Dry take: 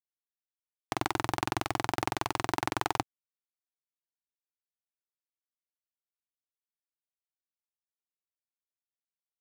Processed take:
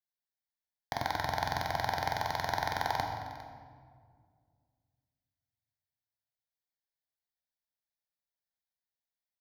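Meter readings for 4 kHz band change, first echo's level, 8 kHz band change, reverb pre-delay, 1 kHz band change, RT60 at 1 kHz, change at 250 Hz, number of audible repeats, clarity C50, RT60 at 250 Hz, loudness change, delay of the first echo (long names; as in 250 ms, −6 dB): −1.0 dB, −16.5 dB, −6.0 dB, 10 ms, 0.0 dB, 1.8 s, −9.5 dB, 1, 4.0 dB, 2.6 s, −1.5 dB, 404 ms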